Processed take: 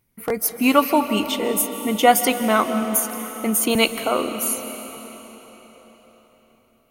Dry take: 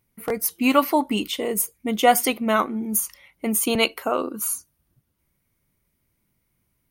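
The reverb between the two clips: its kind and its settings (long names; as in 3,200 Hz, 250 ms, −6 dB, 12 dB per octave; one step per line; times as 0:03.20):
comb and all-pass reverb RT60 4.6 s, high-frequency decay 0.9×, pre-delay 110 ms, DRR 8.5 dB
level +2 dB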